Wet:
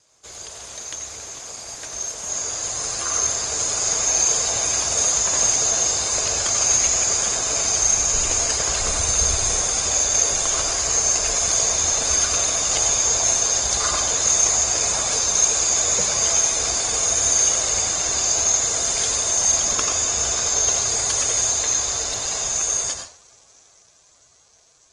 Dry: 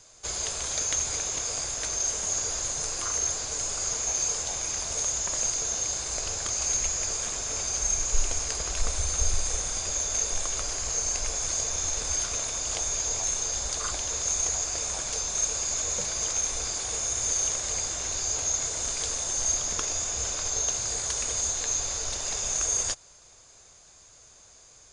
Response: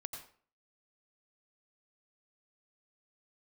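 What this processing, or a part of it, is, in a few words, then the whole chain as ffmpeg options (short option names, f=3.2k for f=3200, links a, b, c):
far-field microphone of a smart speaker: -filter_complex "[1:a]atrim=start_sample=2205[a];[0:a][a]afir=irnorm=-1:irlink=0,highpass=f=120:p=1,dynaudnorm=f=510:g=11:m=13dB" -ar 48000 -c:a libopus -b:a 20k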